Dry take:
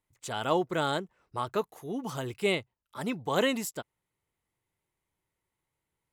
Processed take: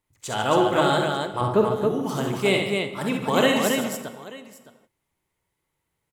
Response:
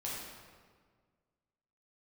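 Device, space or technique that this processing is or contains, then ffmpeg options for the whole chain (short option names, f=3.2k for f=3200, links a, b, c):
keyed gated reverb: -filter_complex "[0:a]asplit=3[a][b][c];[1:a]atrim=start_sample=2205[d];[b][d]afir=irnorm=-1:irlink=0[e];[c]apad=whole_len=270030[f];[e][f]sidechaingate=range=-33dB:threshold=-56dB:ratio=16:detection=peak,volume=-7.5dB[g];[a][g]amix=inputs=2:normalize=0,asettb=1/sr,asplit=3[h][i][j];[h]atrim=end=1.414[k];[i]atrim=start=1.41:end=1.87,asetpts=PTS-STARTPTS,afade=t=in:d=0.004:c=qsin,afade=t=out:st=0.456:d=0.004:c=qsin,tiltshelf=f=970:g=8[l];[j]atrim=start=1.866[m];[k][l]acrossfade=d=0.004:c1=hsin:c2=qsin[n];[n][m]acrossfade=d=0.004:c1=qsin:c2=hsin,aecho=1:1:47|66|146|274|888:0.398|0.531|0.299|0.631|0.112,volume=3.5dB"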